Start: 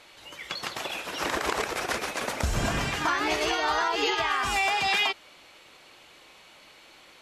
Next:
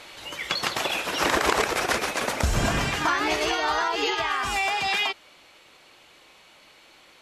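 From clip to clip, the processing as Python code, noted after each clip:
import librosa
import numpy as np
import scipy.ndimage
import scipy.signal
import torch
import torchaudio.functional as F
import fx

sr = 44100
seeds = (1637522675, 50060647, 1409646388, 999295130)

y = fx.rider(x, sr, range_db=10, speed_s=2.0)
y = y * librosa.db_to_amplitude(2.5)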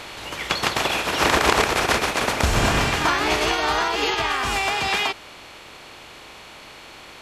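y = fx.bin_compress(x, sr, power=0.6)
y = fx.quant_float(y, sr, bits=6)
y = fx.upward_expand(y, sr, threshold_db=-30.0, expansion=1.5)
y = y * librosa.db_to_amplitude(2.0)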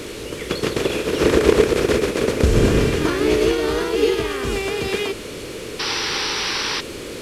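y = fx.delta_mod(x, sr, bps=64000, step_db=-26.0)
y = fx.low_shelf_res(y, sr, hz=590.0, db=9.0, q=3.0)
y = fx.spec_paint(y, sr, seeds[0], shape='noise', start_s=5.79, length_s=1.02, low_hz=760.0, high_hz=6000.0, level_db=-20.0)
y = y * librosa.db_to_amplitude(-4.0)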